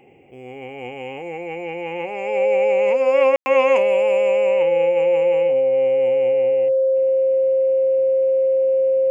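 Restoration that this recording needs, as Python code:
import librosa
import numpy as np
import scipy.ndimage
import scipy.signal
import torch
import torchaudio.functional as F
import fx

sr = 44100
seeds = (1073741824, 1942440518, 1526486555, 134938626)

y = fx.notch(x, sr, hz=530.0, q=30.0)
y = fx.fix_ambience(y, sr, seeds[0], print_start_s=0.0, print_end_s=0.5, start_s=3.36, end_s=3.46)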